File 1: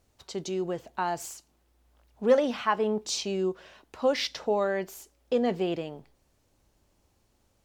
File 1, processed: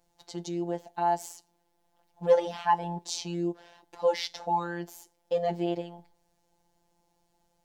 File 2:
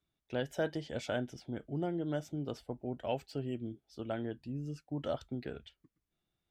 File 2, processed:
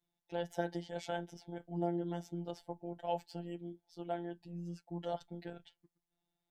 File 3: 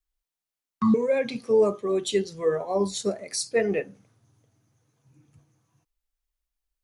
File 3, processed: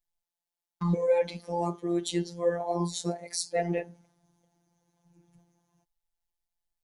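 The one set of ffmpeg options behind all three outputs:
-af "equalizer=f=800:t=o:w=0.33:g=12,equalizer=f=1250:t=o:w=0.33:g=-6,equalizer=f=2500:t=o:w=0.33:g=-4,afftfilt=real='hypot(re,im)*cos(PI*b)':imag='0':win_size=1024:overlap=0.75"

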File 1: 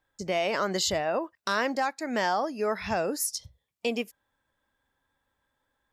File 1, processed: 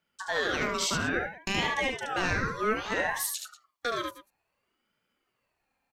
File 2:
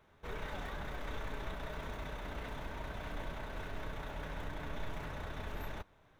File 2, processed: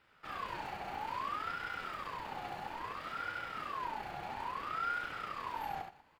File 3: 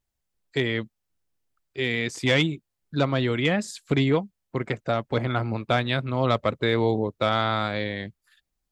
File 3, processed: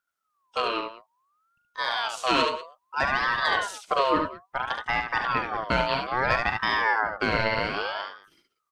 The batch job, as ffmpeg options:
-af "aecho=1:1:40|73|90|190:0.266|0.562|0.119|0.133,aeval=exprs='val(0)*sin(2*PI*1100*n/s+1100*0.3/0.6*sin(2*PI*0.6*n/s))':c=same"

